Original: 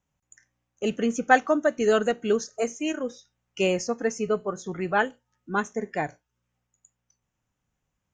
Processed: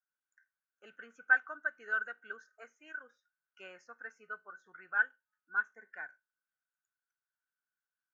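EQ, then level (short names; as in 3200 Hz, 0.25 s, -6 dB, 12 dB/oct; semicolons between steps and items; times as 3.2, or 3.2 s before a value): band-pass 1500 Hz, Q 17; +3.5 dB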